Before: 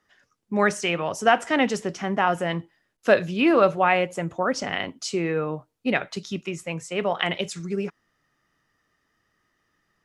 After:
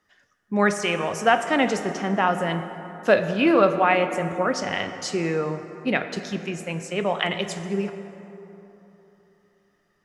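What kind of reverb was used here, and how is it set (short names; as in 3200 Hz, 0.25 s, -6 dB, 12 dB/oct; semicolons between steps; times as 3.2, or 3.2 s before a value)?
plate-style reverb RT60 3.5 s, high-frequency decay 0.45×, DRR 8 dB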